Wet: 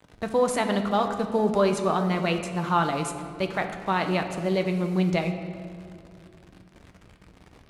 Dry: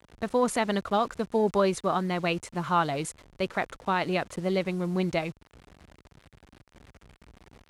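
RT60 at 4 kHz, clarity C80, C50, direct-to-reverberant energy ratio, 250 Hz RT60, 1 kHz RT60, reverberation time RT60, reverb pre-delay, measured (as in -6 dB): 1.4 s, 9.0 dB, 8.0 dB, 5.0 dB, 3.5 s, 1.9 s, 2.2 s, 3 ms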